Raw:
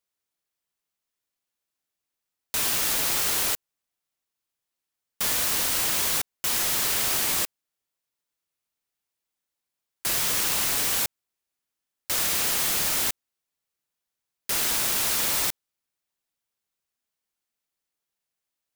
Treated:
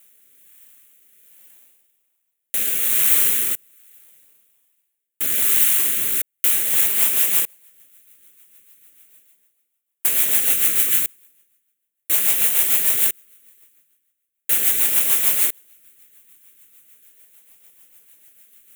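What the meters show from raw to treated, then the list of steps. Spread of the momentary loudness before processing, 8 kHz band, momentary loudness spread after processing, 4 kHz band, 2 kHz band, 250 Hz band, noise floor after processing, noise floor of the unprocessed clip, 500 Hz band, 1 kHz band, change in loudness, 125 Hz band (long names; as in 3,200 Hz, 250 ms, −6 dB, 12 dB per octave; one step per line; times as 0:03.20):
6 LU, +4.0 dB, 8 LU, −2.5 dB, +1.0 dB, −1.0 dB, −77 dBFS, below −85 dBFS, −1.5 dB, −5.5 dB, +7.0 dB, can't be measured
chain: each half-wave held at its own peak
reversed playback
upward compression, threshold −34 dBFS
reversed playback
phaser with its sweep stopped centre 2,100 Hz, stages 4
in parallel at −6.5 dB: sample-and-hold swept by an LFO 39×, swing 100% 0.38 Hz
on the sum: RIAA equalisation recording
rotating-speaker cabinet horn 1.2 Hz, later 6.7 Hz, at 0:06.34
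level −4 dB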